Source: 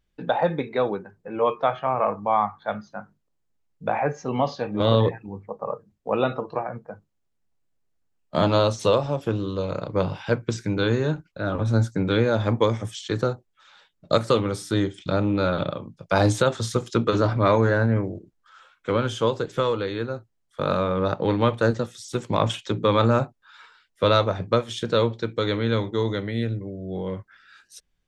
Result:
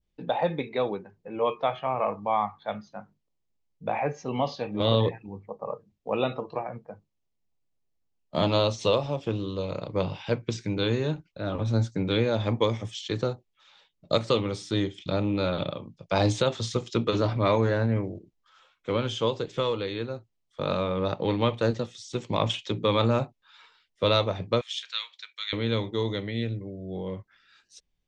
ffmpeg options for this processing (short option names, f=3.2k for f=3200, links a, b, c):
-filter_complex "[0:a]asettb=1/sr,asplit=3[a][b][c];[a]atrim=end=24.614[d];[b]atrim=start=24.61:end=25.53,asetpts=PTS-STARTPTS,afade=t=in:d=0.004:c=qsin,afade=t=out:st=0.916:d=0.004:c=qsin,highpass=f=1.5k:w=0.5412,highpass=f=1.5k:w=1.3066[e];[c]atrim=start=25.526[f];[d][e]acrossfade=d=0.004:c1=hsin:c2=qsin[g];[g][f]acrossfade=d=0.004:c1=qsin:c2=hsin,adynamicequalizer=threshold=0.00891:dfrequency=2700:dqfactor=0.78:tfrequency=2700:tqfactor=0.78:attack=5:release=100:ratio=0.375:range=3:mode=boostabove:tftype=bell,lowpass=f=7.3k:w=0.5412,lowpass=f=7.3k:w=1.3066,equalizer=f=1.5k:w=2.4:g=-8.5,volume=-4dB"